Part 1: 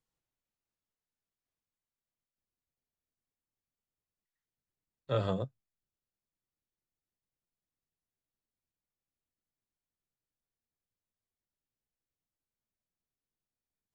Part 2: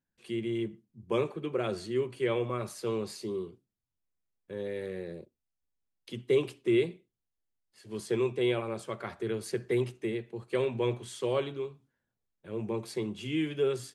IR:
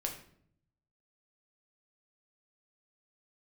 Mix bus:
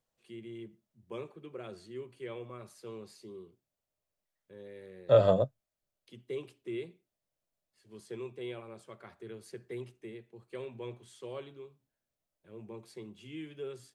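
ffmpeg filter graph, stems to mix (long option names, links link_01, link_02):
-filter_complex "[0:a]equalizer=frequency=610:width_type=o:width=0.48:gain=13.5,volume=2dB[link_01];[1:a]volume=-12.5dB[link_02];[link_01][link_02]amix=inputs=2:normalize=0"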